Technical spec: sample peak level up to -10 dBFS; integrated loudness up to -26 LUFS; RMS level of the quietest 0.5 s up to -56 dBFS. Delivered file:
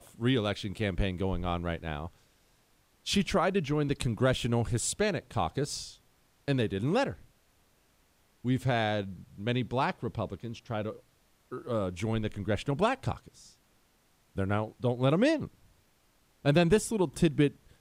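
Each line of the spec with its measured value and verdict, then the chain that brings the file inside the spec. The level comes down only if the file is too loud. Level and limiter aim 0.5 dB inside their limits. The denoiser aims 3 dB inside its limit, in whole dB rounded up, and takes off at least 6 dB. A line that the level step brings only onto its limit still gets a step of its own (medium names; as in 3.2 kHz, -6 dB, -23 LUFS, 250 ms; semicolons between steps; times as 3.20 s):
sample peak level -10.5 dBFS: pass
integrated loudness -30.5 LUFS: pass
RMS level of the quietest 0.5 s -68 dBFS: pass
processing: none needed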